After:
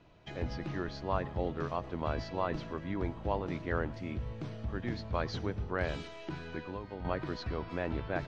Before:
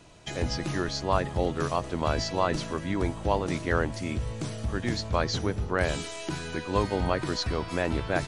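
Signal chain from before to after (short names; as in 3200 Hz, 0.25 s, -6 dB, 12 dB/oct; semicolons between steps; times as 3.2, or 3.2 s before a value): 5.15–6.08 high shelf 4000 Hz +6 dB; 6.65–7.05 compressor 6:1, threshold -30 dBFS, peak gain reduction 11 dB; air absorption 240 m; reverb RT60 0.15 s, pre-delay 96 ms, DRR 23.5 dB; gain -6.5 dB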